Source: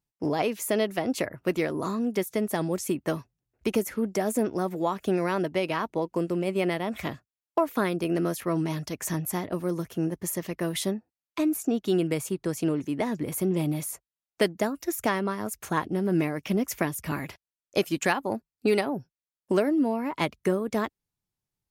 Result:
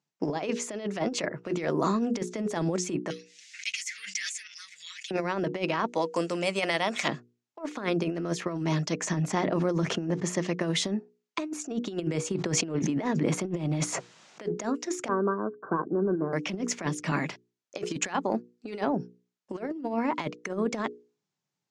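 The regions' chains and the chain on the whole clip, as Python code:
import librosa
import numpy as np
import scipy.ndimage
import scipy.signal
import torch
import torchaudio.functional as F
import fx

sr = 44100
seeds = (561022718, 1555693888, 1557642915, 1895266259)

y = fx.chain(x, sr, fx.ellip_highpass(hz=2000.0, order=4, stop_db=60),
    fx.comb(ms=6.3, depth=0.87),
    fx.pre_swell(db_per_s=69.0), at=(3.1, 5.11))
y = fx.chain(y, sr, fx.riaa(side='recording'),
    fx.notch(hz=370.0, q=6.9), at=(5.88, 7.08))
y = fx.chain(y, sr, fx.high_shelf(hz=8100.0, db=-11.5),
    fx.sustainer(db_per_s=55.0), at=(9.05, 10.38))
y = fx.chain(y, sr, fx.high_shelf(hz=5100.0, db=-7.0),
    fx.sustainer(db_per_s=30.0), at=(12.34, 14.46))
y = fx.chain(y, sr, fx.cheby_ripple(hz=1600.0, ripple_db=9),
    fx.band_squash(depth_pct=40), at=(15.08, 16.33))
y = scipy.signal.sosfilt(scipy.signal.ellip(3, 1.0, 40, [150.0, 6900.0], 'bandpass', fs=sr, output='sos'), y)
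y = fx.hum_notches(y, sr, base_hz=60, count=8)
y = fx.over_compress(y, sr, threshold_db=-30.0, ratio=-0.5)
y = y * 10.0 ** (2.5 / 20.0)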